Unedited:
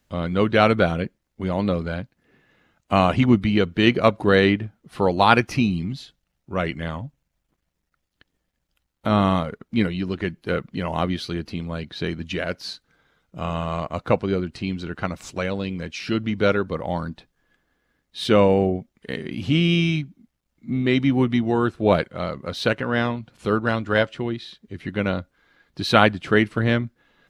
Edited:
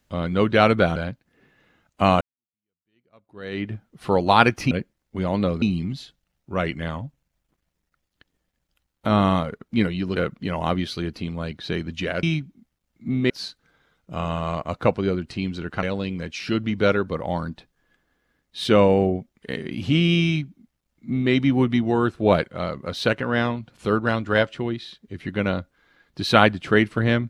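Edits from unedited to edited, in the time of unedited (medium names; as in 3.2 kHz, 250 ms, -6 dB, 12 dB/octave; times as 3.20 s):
0.96–1.87 s: move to 5.62 s
3.12–4.65 s: fade in exponential
10.16–10.48 s: delete
15.08–15.43 s: delete
19.85–20.92 s: copy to 12.55 s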